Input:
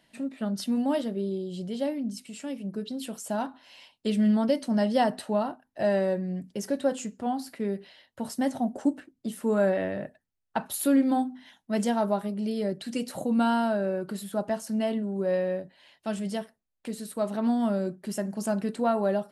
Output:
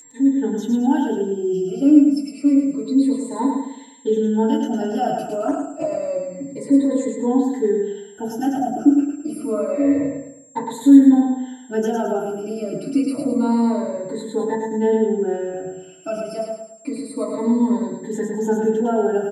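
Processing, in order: moving spectral ripple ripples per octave 1, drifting -0.28 Hz, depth 22 dB; 14.54–15.53 gate -25 dBFS, range -13 dB; limiter -16.5 dBFS, peak gain reduction 10.5 dB; small resonant body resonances 280/410 Hz, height 9 dB, ringing for 30 ms; whine 7500 Hz -27 dBFS; feedback echo 0.107 s, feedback 39%, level -4 dB; FDN reverb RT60 0.32 s, low-frequency decay 1×, high-frequency decay 0.4×, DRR -10 dB; 5.26–6.1 Doppler distortion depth 0.15 ms; gain -12 dB

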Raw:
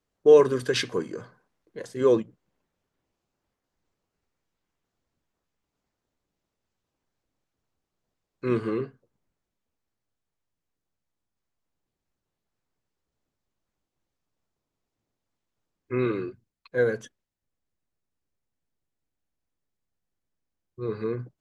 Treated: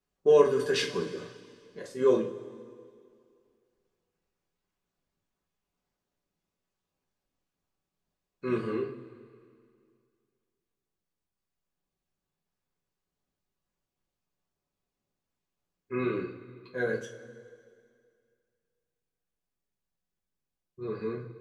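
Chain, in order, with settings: two-slope reverb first 0.29 s, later 2.2 s, from -18 dB, DRR -2.5 dB; gain -7 dB

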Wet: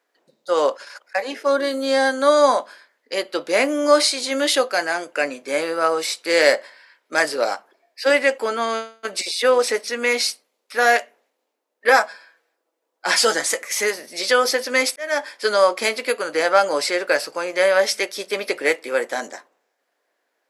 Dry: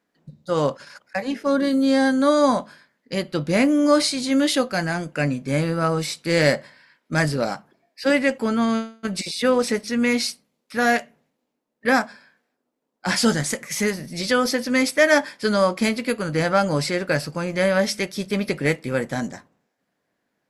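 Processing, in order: HPF 390 Hz 24 dB/oct; 11.88–13.63 comb 6.1 ms, depth 49%; 14.96–15.46 fade in; gain +4 dB

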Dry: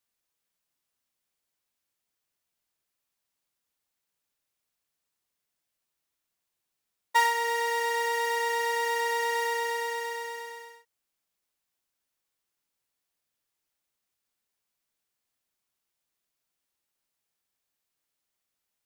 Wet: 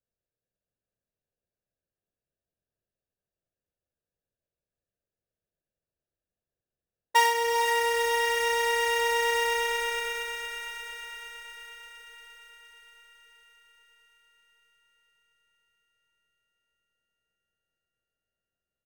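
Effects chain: Wiener smoothing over 41 samples; comb 1.8 ms, depth 44%; on a send: diffused feedback echo 0.462 s, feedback 63%, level -6 dB; on the sum: gain +3 dB

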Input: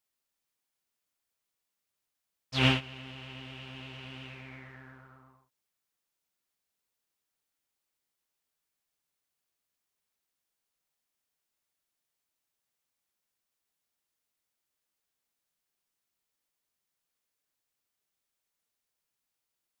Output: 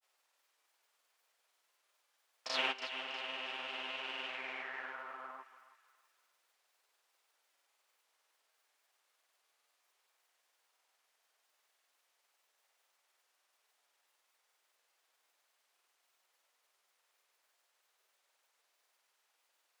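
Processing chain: Bessel high-pass 790 Hz, order 4; tilt -3 dB/oct; compressor 2.5:1, threshold -58 dBFS, peak gain reduction 20 dB; grains, pitch spread up and down by 0 st; thinning echo 0.322 s, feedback 42%, high-pass 1200 Hz, level -11.5 dB; gain +17 dB

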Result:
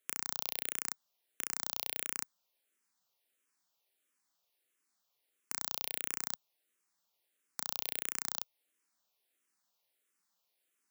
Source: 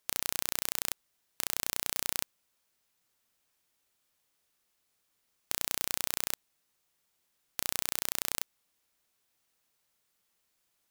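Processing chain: HPF 210 Hz 12 dB/oct; endless phaser -1.5 Hz; gain -1.5 dB

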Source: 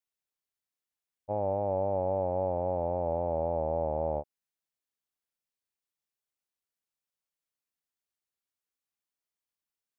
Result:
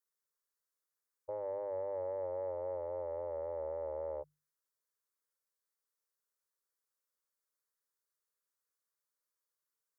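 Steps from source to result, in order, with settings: notches 50/100/150/200/250 Hz; added harmonics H 3 -27 dB, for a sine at -20 dBFS; limiter -31 dBFS, peak gain reduction 11 dB; resonant low shelf 370 Hz -9 dB, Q 1.5; fixed phaser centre 730 Hz, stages 6; gain +4 dB

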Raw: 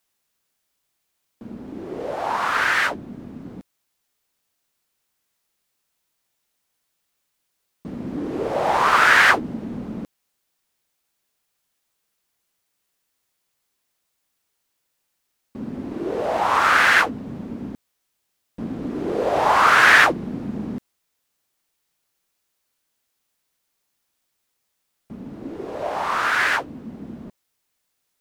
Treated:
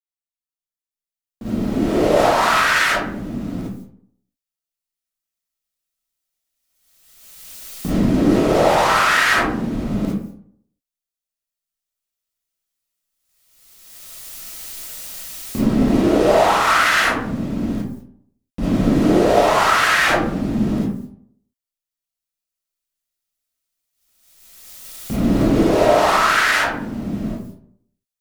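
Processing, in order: recorder AGC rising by 5.6 dB/s; low shelf 200 Hz +11.5 dB; gate -48 dBFS, range -36 dB; high shelf 2500 Hz +12 dB; limiter -9.5 dBFS, peak gain reduction 13 dB; reverb RT60 0.65 s, pre-delay 10 ms, DRR -9.5 dB; gain -7 dB

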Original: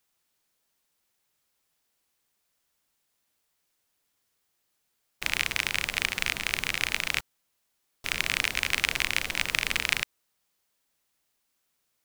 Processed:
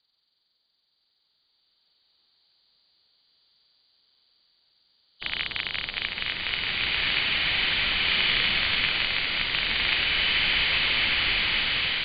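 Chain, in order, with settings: nonlinear frequency compression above 2900 Hz 4:1; bloom reverb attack 2.04 s, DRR -6.5 dB; gain -2.5 dB

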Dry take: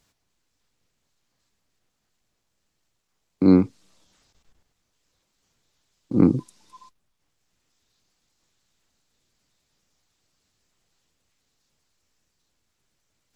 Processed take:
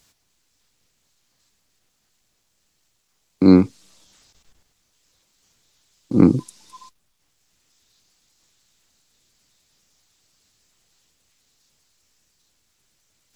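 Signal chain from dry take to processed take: high shelf 2600 Hz +7.5 dB; gain +3.5 dB

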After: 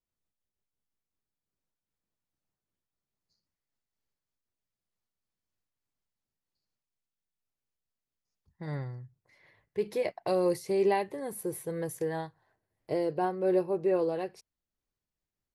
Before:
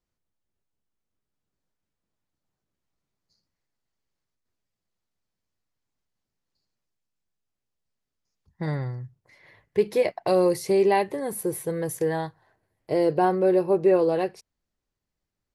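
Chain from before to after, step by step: noise-modulated level, depth 60%; gain -4 dB

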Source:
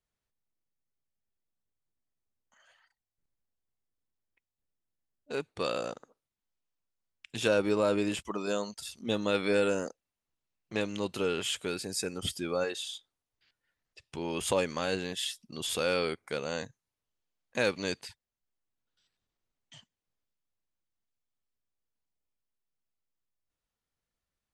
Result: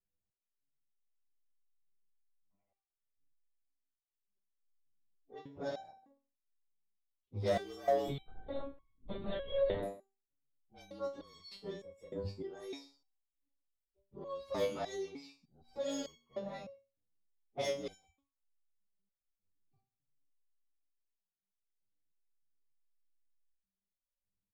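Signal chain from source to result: inharmonic rescaling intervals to 114%; low-pass opened by the level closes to 350 Hz, open at -27 dBFS; bell 1600 Hz -13.5 dB 0.49 oct; de-hum 119.1 Hz, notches 2; in parallel at +2.5 dB: compressor, threshold -41 dBFS, peak gain reduction 16 dB; on the sum: soft clip -23 dBFS, distortion -16 dB; on a send: echo 0.136 s -21.5 dB; 8.08–9.83 on the sum: LPC vocoder at 8 kHz whisper; stepped resonator 3.3 Hz 99–1100 Hz; gain +5.5 dB

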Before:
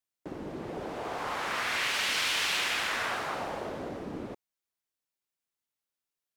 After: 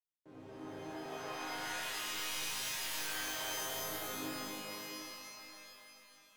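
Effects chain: wavefolder -29 dBFS; resonator bank G#2 major, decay 0.81 s; shimmer reverb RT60 3.2 s, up +12 st, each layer -2 dB, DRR -6.5 dB; gain +2 dB

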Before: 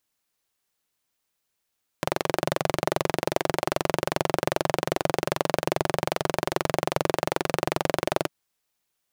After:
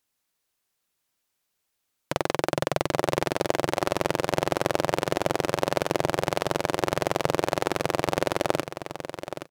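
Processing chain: on a send: feedback echo 0.79 s, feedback 18%, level -10 dB; on the sum: speed mistake 25 fps video run at 24 fps

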